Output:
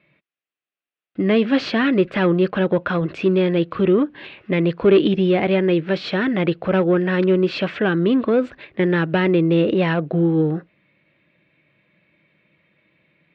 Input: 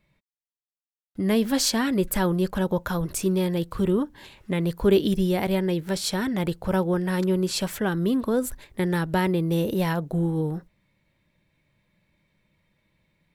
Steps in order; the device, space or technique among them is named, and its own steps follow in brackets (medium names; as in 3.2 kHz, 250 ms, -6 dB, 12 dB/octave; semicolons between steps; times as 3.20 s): overdrive pedal into a guitar cabinet (overdrive pedal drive 16 dB, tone 1.5 kHz, clips at -8.5 dBFS; cabinet simulation 91–3800 Hz, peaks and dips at 150 Hz +4 dB, 320 Hz +5 dB, 910 Hz -10 dB, 2.6 kHz +6 dB); trim +3 dB